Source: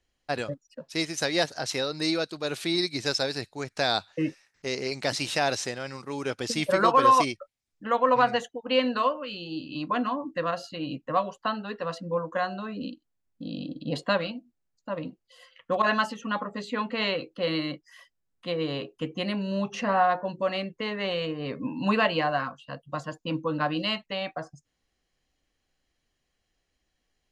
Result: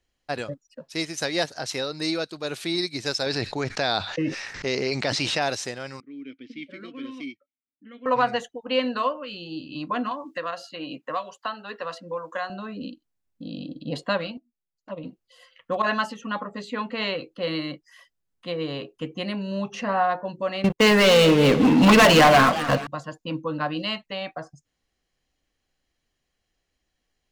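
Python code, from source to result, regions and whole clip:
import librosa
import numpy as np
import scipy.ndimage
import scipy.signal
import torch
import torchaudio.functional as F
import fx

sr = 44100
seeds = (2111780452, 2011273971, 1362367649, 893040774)

y = fx.chain(x, sr, fx.lowpass(hz=5400.0, slope=12),
    fx.env_flatten(amount_pct=70), at=(3.26, 5.42))
y = fx.chain(y, sr, fx.env_lowpass(base_hz=1700.0, full_db=-17.5),
    fx.vowel_filter(vowel='i'), at=(6.0, 8.06))
y = fx.chain(y, sr, fx.highpass(hz=700.0, slope=6),
    fx.band_squash(depth_pct=70), at=(10.11, 12.5))
y = fx.chain(y, sr, fx.env_flanger(rest_ms=6.9, full_db=-29.5),
    fx.high_shelf(hz=8300.0, db=-5.0),
    fx.upward_expand(threshold_db=-47.0, expansion=1.5), at=(14.37, 15.04))
y = fx.chain(y, sr, fx.leveller(passes=5),
    fx.echo_warbled(ms=214, feedback_pct=50, rate_hz=2.8, cents=219, wet_db=-13.0), at=(20.64, 22.87))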